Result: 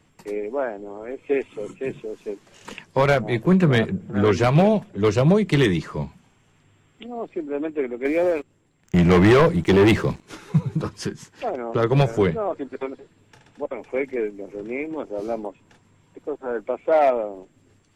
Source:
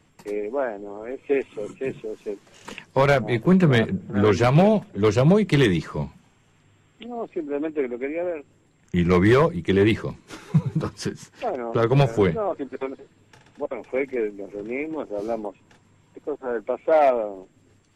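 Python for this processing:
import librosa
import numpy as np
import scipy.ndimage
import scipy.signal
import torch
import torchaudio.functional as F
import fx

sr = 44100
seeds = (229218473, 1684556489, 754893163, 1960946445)

y = fx.leveller(x, sr, passes=2, at=(8.05, 10.23))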